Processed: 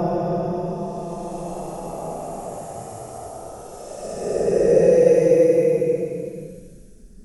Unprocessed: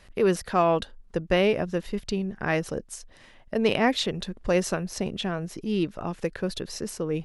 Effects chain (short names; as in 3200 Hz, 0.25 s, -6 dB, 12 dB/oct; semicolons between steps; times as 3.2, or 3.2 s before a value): reverse delay 0.382 s, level -9 dB; band shelf 2100 Hz -13.5 dB 2.6 oct; in parallel at +2 dB: limiter -20.5 dBFS, peak gain reduction 9.5 dB; on the sum: Paulstretch 33×, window 0.05 s, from 6.1; resonant low shelf 360 Hz -7 dB, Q 1.5; gain +4.5 dB